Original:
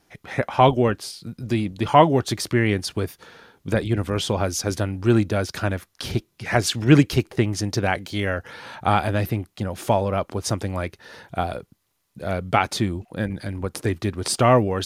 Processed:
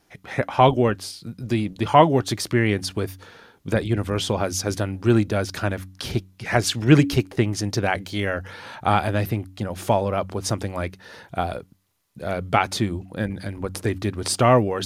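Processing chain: de-hum 94.09 Hz, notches 3

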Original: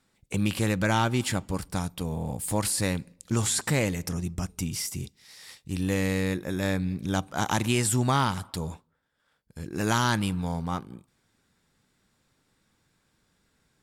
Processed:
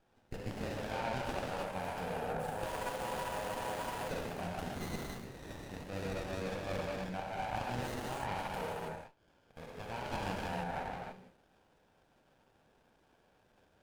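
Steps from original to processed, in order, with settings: high-pass 430 Hz 12 dB/octave; resonant high shelf 3.1 kHz -9.5 dB, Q 3; reverse; compression 12:1, threshold -37 dBFS, peak gain reduction 18.5 dB; reverse; static phaser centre 1.2 kHz, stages 6; gated-style reverb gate 350 ms flat, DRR -5.5 dB; spectral freeze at 2.70 s, 1.40 s; sliding maximum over 17 samples; trim +2.5 dB

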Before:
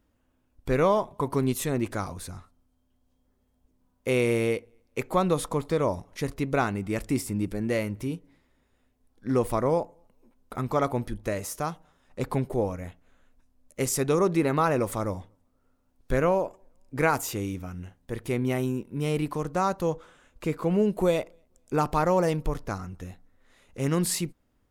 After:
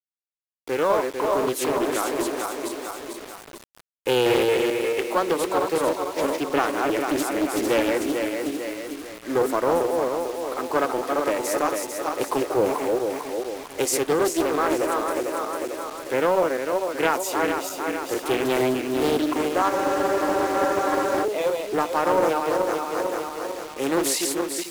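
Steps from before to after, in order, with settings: backward echo that repeats 224 ms, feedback 66%, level -3.5 dB; Chebyshev high-pass 300 Hz, order 4; level rider gain up to 16 dB; in parallel at -5 dB: overload inside the chain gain 17 dB; on the sum: bit crusher 5-bit; spectral freeze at 19.72 s, 1.51 s; loudspeaker Doppler distortion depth 0.42 ms; trim -9 dB

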